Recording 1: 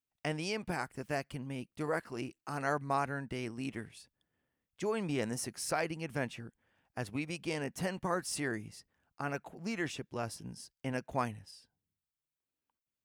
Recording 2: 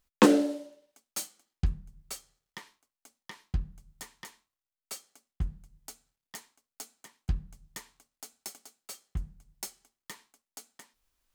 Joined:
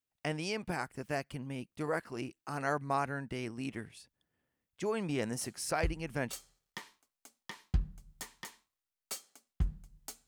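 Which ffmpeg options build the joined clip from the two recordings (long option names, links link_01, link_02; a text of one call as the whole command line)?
ffmpeg -i cue0.wav -i cue1.wav -filter_complex "[1:a]asplit=2[link_01][link_02];[0:a]apad=whole_dur=10.27,atrim=end=10.27,atrim=end=6.332[link_03];[link_02]atrim=start=2.128:end=6.07[link_04];[link_01]atrim=start=1.21:end=2.13,asetpts=PTS-STARTPTS,volume=-7dB,afade=type=in:duration=0.004:curve=hsin,afade=type=out:start_time=0.916:duration=0.004:curve=hsin,adelay=238581S[link_05];[link_03][link_04]acrossfade=duration=0.004:curve1=hsin:curve2=hsin[link_06];[link_06][link_05]amix=inputs=2:normalize=0" out.wav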